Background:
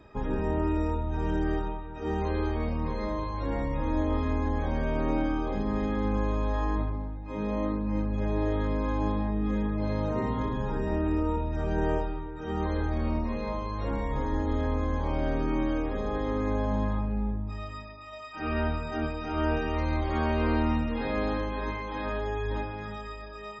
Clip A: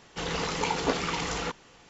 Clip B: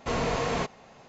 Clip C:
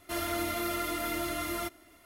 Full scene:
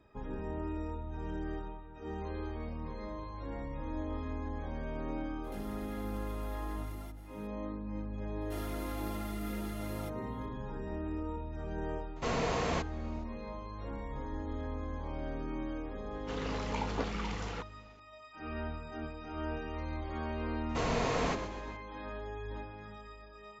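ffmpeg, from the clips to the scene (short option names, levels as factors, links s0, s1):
-filter_complex "[3:a]asplit=2[s0][s1];[2:a]asplit=2[s2][s3];[0:a]volume=0.299[s4];[s0]acompressor=threshold=0.00447:ratio=6:attack=3.2:release=140:knee=1:detection=peak[s5];[1:a]aemphasis=mode=reproduction:type=50kf[s6];[s3]asplit=6[s7][s8][s9][s10][s11][s12];[s8]adelay=128,afreqshift=-41,volume=0.316[s13];[s9]adelay=256,afreqshift=-82,volume=0.151[s14];[s10]adelay=384,afreqshift=-123,volume=0.0724[s15];[s11]adelay=512,afreqshift=-164,volume=0.0351[s16];[s12]adelay=640,afreqshift=-205,volume=0.0168[s17];[s7][s13][s14][s15][s16][s17]amix=inputs=6:normalize=0[s18];[s5]atrim=end=2.05,asetpts=PTS-STARTPTS,volume=0.596,afade=t=in:d=0.02,afade=t=out:st=2.03:d=0.02,adelay=5430[s19];[s1]atrim=end=2.05,asetpts=PTS-STARTPTS,volume=0.224,afade=t=in:d=0.004:c=hsin,afade=t=out:st=2.046:d=0.004:c=hsin,adelay=8410[s20];[s2]atrim=end=1.08,asetpts=PTS-STARTPTS,volume=0.596,afade=t=in:d=0.004:c=hsin,afade=t=out:st=1.076:d=0.004:c=hsin,adelay=12160[s21];[s6]atrim=end=1.89,asetpts=PTS-STARTPTS,volume=0.376,afade=t=in:d=0.004:c=hsin,afade=t=out:st=1.886:d=0.004:c=hsin,adelay=16110[s22];[s18]atrim=end=1.08,asetpts=PTS-STARTPTS,volume=0.596,afade=t=in:d=0.004:c=hsin,afade=t=out:st=1.076:d=0.004:c=hsin,adelay=20690[s23];[s4][s19][s20][s21][s22][s23]amix=inputs=6:normalize=0"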